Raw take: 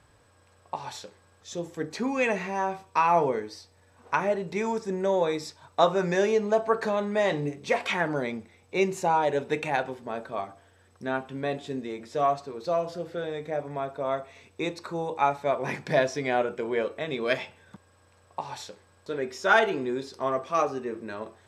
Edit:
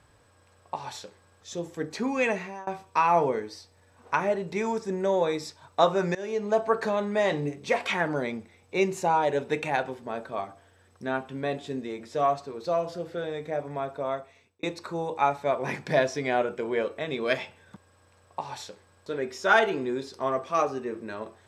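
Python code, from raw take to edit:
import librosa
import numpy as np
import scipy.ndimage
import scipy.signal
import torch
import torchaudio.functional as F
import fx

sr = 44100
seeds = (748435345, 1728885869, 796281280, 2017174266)

y = fx.edit(x, sr, fx.fade_out_to(start_s=2.29, length_s=0.38, floor_db=-22.5),
    fx.fade_in_from(start_s=6.15, length_s=0.42, floor_db=-20.5),
    fx.fade_out_span(start_s=13.99, length_s=0.64), tone=tone)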